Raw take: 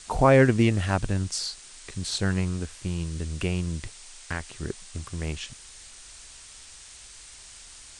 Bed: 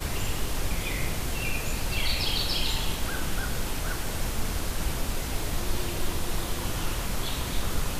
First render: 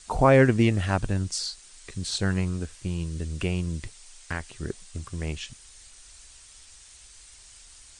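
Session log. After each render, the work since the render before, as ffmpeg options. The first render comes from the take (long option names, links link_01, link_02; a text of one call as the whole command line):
ffmpeg -i in.wav -af "afftdn=noise_reduction=6:noise_floor=-47" out.wav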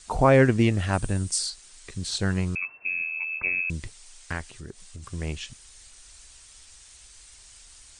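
ffmpeg -i in.wav -filter_complex "[0:a]asettb=1/sr,asplit=3[link_01][link_02][link_03];[link_01]atrim=end=0.934[link_04];[link_02]atrim=start=0.93:end=1.5,asetpts=PTS-STARTPTS,afade=type=in:duration=0.004:curve=qsin,afade=type=out:start_time=0.566:duration=0.004:curve=qsin,equalizer=frequency=8800:width_type=o:width=0.39:gain=11[link_05];[link_03]atrim=start=1.496[link_06];[link_04][link_05]acrossfade=duration=0.004:curve1=hsin:curve2=qsin[link_07];[link_07][link_06]acrossfade=duration=0.004:curve1=qsin:curve2=hsin,asettb=1/sr,asplit=3[link_08][link_09][link_10];[link_08]atrim=end=2.554[link_11];[link_09]atrim=start=2.55:end=3.7,asetpts=PTS-STARTPTS,afade=type=in:duration=0.004:curve=qsin,afade=type=out:start_time=1.146:duration=0.004:curve=qsin,lowpass=frequency=2300:width_type=q:width=0.5098,lowpass=frequency=2300:width_type=q:width=0.6013,lowpass=frequency=2300:width_type=q:width=0.9,lowpass=frequency=2300:width_type=q:width=2.563,afreqshift=-2700[link_12];[link_10]atrim=start=3.696[link_13];[link_11][link_12]acrossfade=duration=0.004:curve1=hsin:curve2=qsin[link_14];[link_14][link_13]acrossfade=duration=0.004:curve1=qsin:curve2=hsin,asplit=3[link_15][link_16][link_17];[link_15]afade=type=out:start_time=4.49:duration=0.02[link_18];[link_16]acompressor=threshold=-41dB:ratio=2:attack=3.2:release=140:knee=1:detection=peak,afade=type=in:start_time=4.49:duration=0.02,afade=type=out:start_time=5.02:duration=0.02[link_19];[link_17]afade=type=in:start_time=5.02:duration=0.02[link_20];[link_18][link_19][link_20]amix=inputs=3:normalize=0" out.wav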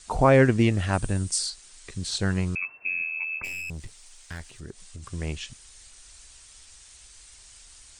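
ffmpeg -i in.wav -filter_complex "[0:a]asplit=3[link_01][link_02][link_03];[link_01]afade=type=out:start_time=3.43:duration=0.02[link_04];[link_02]aeval=exprs='(tanh(39.8*val(0)+0.35)-tanh(0.35))/39.8':channel_layout=same,afade=type=in:start_time=3.43:duration=0.02,afade=type=out:start_time=4.61:duration=0.02[link_05];[link_03]afade=type=in:start_time=4.61:duration=0.02[link_06];[link_04][link_05][link_06]amix=inputs=3:normalize=0" out.wav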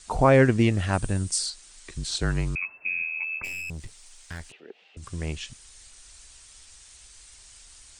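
ffmpeg -i in.wav -filter_complex "[0:a]asettb=1/sr,asplit=3[link_01][link_02][link_03];[link_01]atrim=end=1.444[link_04];[link_02]atrim=start=1.44:end=3.23,asetpts=PTS-STARTPTS,afade=type=in:duration=0.004:curve=qsin,afade=type=out:start_time=1.786:duration=0.004:curve=qsin,afreqshift=-38[link_05];[link_03]atrim=start=3.226[link_06];[link_04][link_05]acrossfade=duration=0.004:curve1=hsin:curve2=qsin[link_07];[link_07][link_06]acrossfade=duration=0.004:curve1=qsin:curve2=hsin,asettb=1/sr,asplit=3[link_08][link_09][link_10];[link_08]atrim=end=4.524[link_11];[link_09]atrim=start=4.52:end=4.97,asetpts=PTS-STARTPTS,afade=type=in:duration=0.004:curve=qsin,afade=type=out:start_time=0.446:duration=0.004:curve=qsin,highpass=frequency=300:width=0.5412,highpass=frequency=300:width=1.3066,equalizer=frequency=330:width_type=q:width=4:gain=-5,equalizer=frequency=470:width_type=q:width=4:gain=6,equalizer=frequency=780:width_type=q:width=4:gain=7,equalizer=frequency=1100:width_type=q:width=4:gain=-9,equalizer=frequency=1600:width_type=q:width=4:gain=-3,equalizer=frequency=2700:width_type=q:width=4:gain=9,lowpass=frequency=3200:width=0.5412,lowpass=frequency=3200:width=1.3066[link_12];[link_10]atrim=start=4.966[link_13];[link_11][link_12]acrossfade=duration=0.004:curve1=hsin:curve2=qsin[link_14];[link_14][link_13]acrossfade=duration=0.004:curve1=qsin:curve2=hsin" out.wav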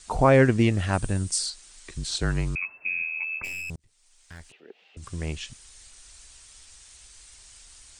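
ffmpeg -i in.wav -filter_complex "[0:a]asplit=2[link_01][link_02];[link_01]atrim=end=3.76,asetpts=PTS-STARTPTS,afade=type=out:start_time=3.756:duration=0.004:curve=hsin[link_03];[link_02]atrim=start=3.76,asetpts=PTS-STARTPTS,afade=type=in:duration=1.25[link_04];[link_03][link_04]concat=n=2:v=0:a=1" out.wav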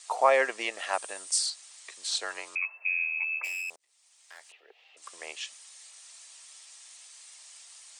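ffmpeg -i in.wav -af "highpass=frequency=580:width=0.5412,highpass=frequency=580:width=1.3066,bandreject=frequency=1500:width=10" out.wav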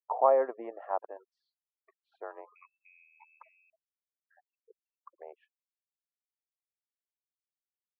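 ffmpeg -i in.wav -af "afftfilt=real='re*gte(hypot(re,im),0.01)':imag='im*gte(hypot(re,im),0.01)':win_size=1024:overlap=0.75,lowpass=frequency=1000:width=0.5412,lowpass=frequency=1000:width=1.3066" out.wav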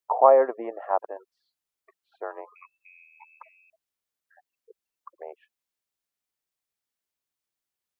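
ffmpeg -i in.wav -af "volume=7.5dB" out.wav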